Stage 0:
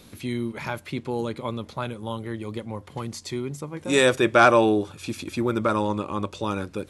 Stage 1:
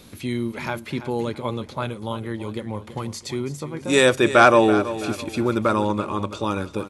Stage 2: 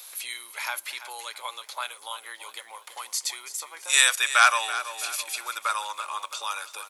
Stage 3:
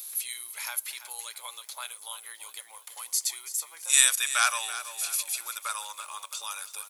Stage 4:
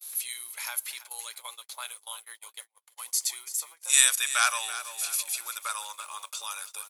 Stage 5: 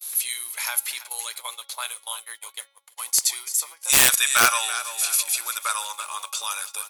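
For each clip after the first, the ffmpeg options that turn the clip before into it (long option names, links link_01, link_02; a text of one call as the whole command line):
ffmpeg -i in.wav -af "aecho=1:1:331|662|993:0.224|0.0784|0.0274,volume=2.5dB" out.wav
ffmpeg -i in.wav -filter_complex "[0:a]acrossover=split=1100[link_01][link_02];[link_01]acompressor=threshold=-32dB:ratio=4[link_03];[link_02]aemphasis=mode=production:type=50fm[link_04];[link_03][link_04]amix=inputs=2:normalize=0,highpass=frequency=740:width=0.5412,highpass=frequency=740:width=1.3066" out.wav
ffmpeg -i in.wav -af "aemphasis=mode=production:type=75kf,volume=-9.5dB" out.wav
ffmpeg -i in.wav -af "agate=range=-38dB:threshold=-42dB:ratio=16:detection=peak" out.wav
ffmpeg -i in.wav -af "bandreject=frequency=277.6:width_type=h:width=4,bandreject=frequency=555.2:width_type=h:width=4,bandreject=frequency=832.8:width_type=h:width=4,bandreject=frequency=1110.4:width_type=h:width=4,bandreject=frequency=1388:width_type=h:width=4,bandreject=frequency=1665.6:width_type=h:width=4,bandreject=frequency=1943.2:width_type=h:width=4,bandreject=frequency=2220.8:width_type=h:width=4,bandreject=frequency=2498.4:width_type=h:width=4,bandreject=frequency=2776:width_type=h:width=4,bandreject=frequency=3053.6:width_type=h:width=4,bandreject=frequency=3331.2:width_type=h:width=4,bandreject=frequency=3608.8:width_type=h:width=4,bandreject=frequency=3886.4:width_type=h:width=4,bandreject=frequency=4164:width_type=h:width=4,bandreject=frequency=4441.6:width_type=h:width=4,bandreject=frequency=4719.2:width_type=h:width=4,bandreject=frequency=4996.8:width_type=h:width=4,bandreject=frequency=5274.4:width_type=h:width=4,bandreject=frequency=5552:width_type=h:width=4,bandreject=frequency=5829.6:width_type=h:width=4,bandreject=frequency=6107.2:width_type=h:width=4,aeval=exprs='(mod(4.47*val(0)+1,2)-1)/4.47':channel_layout=same,volume=8dB" -ar 48000 -c:a libmp3lame -b:a 160k out.mp3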